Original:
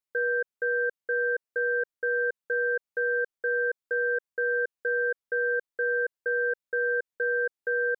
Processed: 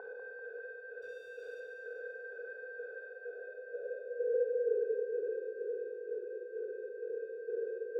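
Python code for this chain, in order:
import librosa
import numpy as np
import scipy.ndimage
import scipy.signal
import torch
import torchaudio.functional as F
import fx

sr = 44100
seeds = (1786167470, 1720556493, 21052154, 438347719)

p1 = fx.spec_steps(x, sr, hold_ms=400)
p2 = scipy.signal.sosfilt(scipy.signal.butter(2, 1300.0, 'lowpass', fs=sr, output='sos'), p1)
p3 = 10.0 ** (-39.5 / 20.0) * np.tanh(p2 / 10.0 ** (-39.5 / 20.0))
p4 = p2 + F.gain(torch.from_numpy(p3), -8.0).numpy()
p5 = fx.filter_sweep_bandpass(p4, sr, from_hz=860.0, to_hz=370.0, start_s=2.94, end_s=5.05, q=5.9)
p6 = fx.backlash(p5, sr, play_db=-58.5, at=(1.02, 1.6))
p7 = p6 + fx.echo_feedback(p6, sr, ms=195, feedback_pct=59, wet_db=-6.0, dry=0)
p8 = fx.room_shoebox(p7, sr, seeds[0], volume_m3=2700.0, walls='furnished', distance_m=3.3)
y = F.gain(torch.from_numpy(p8), 3.0).numpy()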